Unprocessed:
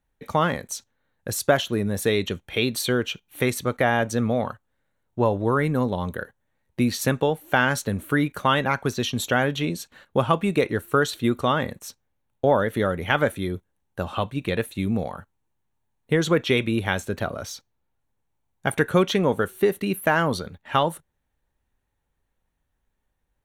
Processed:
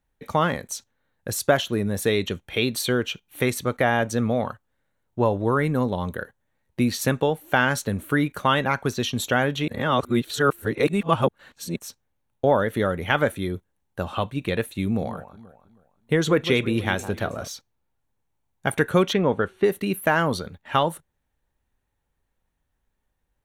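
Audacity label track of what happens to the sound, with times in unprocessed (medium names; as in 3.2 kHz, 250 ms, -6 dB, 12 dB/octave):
9.680000	11.760000	reverse
14.850000	17.480000	echo whose repeats swap between lows and highs 160 ms, split 1.2 kHz, feedback 52%, level -11 dB
19.130000	19.640000	low-pass 3.4 kHz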